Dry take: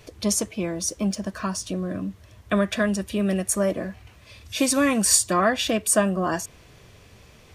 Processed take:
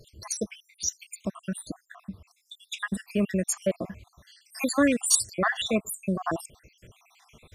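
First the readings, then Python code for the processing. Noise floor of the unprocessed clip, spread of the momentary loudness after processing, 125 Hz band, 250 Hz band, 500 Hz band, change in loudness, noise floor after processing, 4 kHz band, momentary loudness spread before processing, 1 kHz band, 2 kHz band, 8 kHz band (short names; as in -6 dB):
-52 dBFS, 20 LU, -6.0 dB, -5.0 dB, -6.0 dB, -5.0 dB, -69 dBFS, -5.0 dB, 13 LU, -7.0 dB, -3.0 dB, -5.0 dB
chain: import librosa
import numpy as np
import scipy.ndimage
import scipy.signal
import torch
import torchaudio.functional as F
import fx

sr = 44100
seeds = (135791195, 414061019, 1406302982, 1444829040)

y = fx.spec_dropout(x, sr, seeds[0], share_pct=69)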